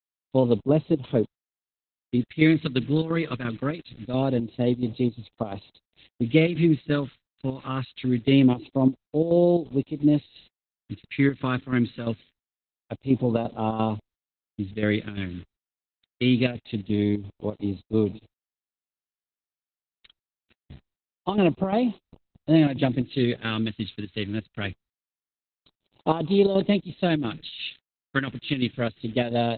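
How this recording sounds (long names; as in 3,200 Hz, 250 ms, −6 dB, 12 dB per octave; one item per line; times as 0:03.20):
a quantiser's noise floor 8 bits, dither none
phaser sweep stages 2, 0.24 Hz, lowest notch 730–1,600 Hz
chopped level 2.9 Hz, depth 60%, duty 75%
Opus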